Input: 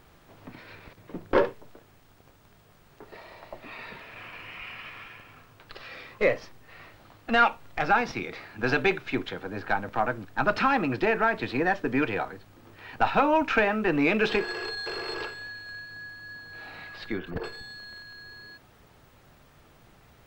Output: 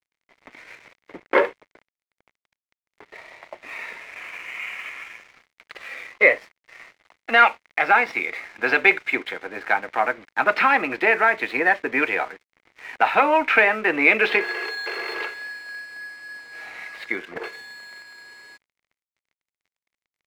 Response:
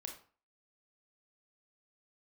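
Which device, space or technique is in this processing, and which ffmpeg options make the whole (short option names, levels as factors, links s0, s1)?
pocket radio on a weak battery: -af "highpass=390,lowpass=3900,aeval=exprs='sgn(val(0))*max(abs(val(0))-0.00251,0)':c=same,equalizer=f=2100:t=o:w=0.4:g=11.5,volume=1.78"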